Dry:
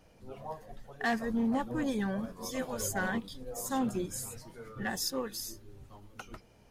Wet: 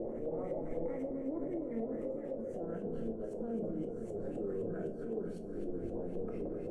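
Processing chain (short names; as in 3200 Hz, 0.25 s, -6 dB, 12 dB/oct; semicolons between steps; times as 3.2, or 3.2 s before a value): per-bin compression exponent 0.6; Doppler pass-by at 2.41, 52 m/s, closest 12 m; EQ curve 170 Hz 0 dB, 480 Hz +12 dB, 950 Hz -17 dB, 2300 Hz -14 dB, 4600 Hz -18 dB, 8300 Hz +6 dB; negative-ratio compressor -47 dBFS, ratio -1; limiter -49 dBFS, peak gain reduction 21 dB; LFO low-pass saw up 3.9 Hz 560–3100 Hz; on a send: echo with dull and thin repeats by turns 0.129 s, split 820 Hz, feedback 83%, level -9.5 dB; on the sum: shoebox room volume 230 m³, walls furnished, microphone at 0.89 m; gain +14 dB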